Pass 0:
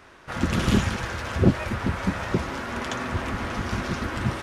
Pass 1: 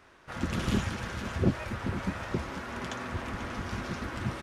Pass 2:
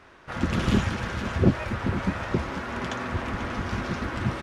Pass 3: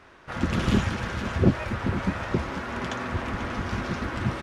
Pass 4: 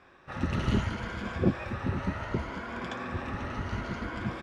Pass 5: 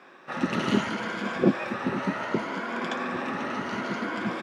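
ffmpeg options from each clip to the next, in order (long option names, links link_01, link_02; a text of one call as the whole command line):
ffmpeg -i in.wav -af "aecho=1:1:490:0.266,volume=-7.5dB" out.wav
ffmpeg -i in.wav -af "highshelf=frequency=7200:gain=-10,volume=6dB" out.wav
ffmpeg -i in.wav -af anull out.wav
ffmpeg -i in.wav -af "afftfilt=real='re*pow(10,7/40*sin(2*PI*(1.8*log(max(b,1)*sr/1024/100)/log(2)-(0.67)*(pts-256)/sr)))':imag='im*pow(10,7/40*sin(2*PI*(1.8*log(max(b,1)*sr/1024/100)/log(2)-(0.67)*(pts-256)/sr)))':win_size=1024:overlap=0.75,highshelf=frequency=6400:gain=-9,volume=-5.5dB" out.wav
ffmpeg -i in.wav -af "highpass=frequency=190:width=0.5412,highpass=frequency=190:width=1.3066,volume=6.5dB" out.wav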